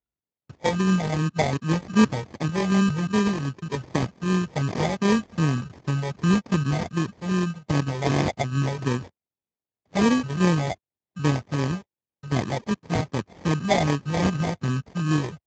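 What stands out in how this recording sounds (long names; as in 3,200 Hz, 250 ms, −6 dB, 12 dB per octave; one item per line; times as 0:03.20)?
a buzz of ramps at a fixed pitch in blocks of 16 samples
phaser sweep stages 8, 2.6 Hz, lowest notch 260–1,000 Hz
aliases and images of a low sample rate 1,400 Hz, jitter 0%
Speex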